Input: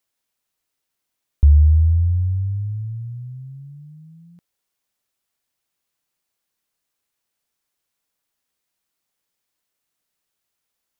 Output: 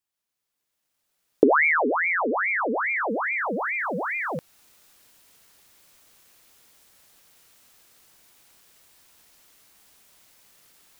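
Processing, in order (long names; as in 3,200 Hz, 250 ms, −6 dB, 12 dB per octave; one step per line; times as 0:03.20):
camcorder AGC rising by 11 dB per second
ring modulator whose carrier an LFO sweeps 1,300 Hz, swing 75%, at 2.4 Hz
level −5.5 dB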